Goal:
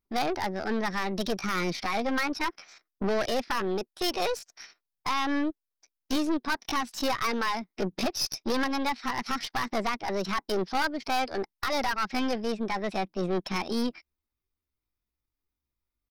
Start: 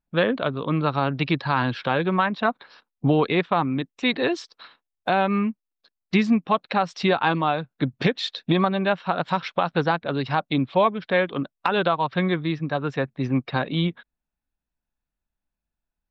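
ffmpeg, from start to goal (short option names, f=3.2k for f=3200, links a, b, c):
-af "aeval=exprs='(tanh(15.8*val(0)+0.55)-tanh(0.55))/15.8':c=same,asetrate=62367,aresample=44100,atempo=0.707107,aexciter=amount=1.6:drive=1:freq=4.3k"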